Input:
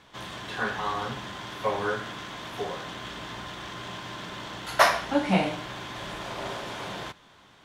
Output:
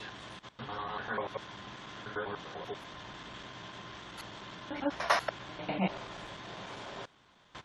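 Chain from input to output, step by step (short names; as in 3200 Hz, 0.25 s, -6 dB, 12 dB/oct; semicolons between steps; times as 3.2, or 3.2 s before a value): slices in reverse order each 98 ms, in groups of 6; spectral gate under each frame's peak -30 dB strong; gain -8 dB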